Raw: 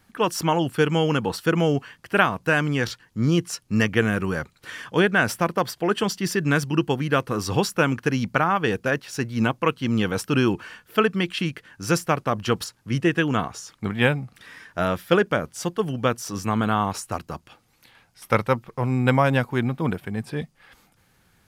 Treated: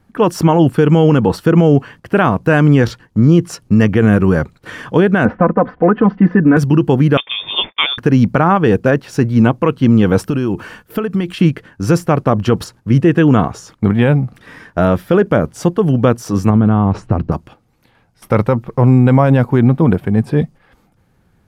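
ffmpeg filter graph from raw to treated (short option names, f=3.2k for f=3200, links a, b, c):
-filter_complex "[0:a]asettb=1/sr,asplit=3[a][b][c];[a]atrim=end=5.254[d];[b]atrim=start=5.25:end=6.57,asetpts=PTS-STARTPTS,afade=t=in:d=0.004:c=qsin,afade=t=out:st=1.316:d=0.004:c=qsin,lowpass=f=1.9k:w=0.5412,lowpass=f=1.9k:w=1.3066,aecho=1:1:4:0.96,atrim=end_sample=58212[e];[c]atrim=start=6.566[f];[d][e]acrossfade=d=0.004:c1=hsin:c2=qsin[g];[g][f]acrossfade=d=0.004:c1=qsin:c2=hsin,asettb=1/sr,asplit=3[h][i][j];[h]atrim=end=7.174[k];[i]atrim=start=7.17:end=7.98,asetpts=PTS-STARTPTS,afade=t=in:d=0.004:c=qsin,afade=t=out:st=0.806:d=0.004:c=qsin,lowpass=f=3.1k:t=q:w=0.5098,lowpass=f=3.1k:t=q:w=0.6013,lowpass=f=3.1k:t=q:w=0.9,lowpass=f=3.1k:t=q:w=2.563,afreqshift=-3700,agate=range=-33dB:threshold=-40dB:ratio=3:release=100:detection=peak[l];[j]atrim=start=7.976[m];[k][l]acrossfade=d=0.004:c1=hsin:c2=qsin[n];[n][m]acrossfade=d=0.004:c1=qsin:c2=hsin,asettb=1/sr,asplit=3[o][p][q];[o]atrim=end=10.264[r];[p]atrim=start=10.26:end=11.4,asetpts=PTS-STARTPTS,afade=t=in:d=0.004:c=qsin,afade=t=out:st=1.136:d=0.004:c=qsin,highshelf=f=7.6k:g=9.5,acompressor=threshold=-27dB:ratio=8:attack=3.2:release=140:knee=1:detection=peak[s];[q]atrim=start=11.396[t];[r][s]acrossfade=d=0.004:c1=hsin:c2=qsin[u];[u][t]acrossfade=d=0.004:c1=qsin:c2=hsin,asettb=1/sr,asplit=3[v][w][x];[v]atrim=end=16.504[y];[w]atrim=start=16.5:end=17.32,asetpts=PTS-STARTPTS,afade=t=in:d=0.004:c=qsin,afade=t=out:st=0.816:d=0.004:c=qsin,lowpass=3.3k,lowshelf=f=370:g=10.5,acompressor=threshold=-24dB:ratio=4:attack=3.2:release=140:knee=1:detection=peak[z];[x]atrim=start=17.316[aa];[y][z]acrossfade=d=0.004:c1=hsin:c2=qsin[ab];[ab][aa]acrossfade=d=0.004:c1=qsin:c2=hsin,agate=range=-8dB:threshold=-46dB:ratio=16:detection=peak,tiltshelf=f=1.2k:g=7.5,alimiter=level_in=9.5dB:limit=-1dB:release=50:level=0:latency=1,volume=-1dB"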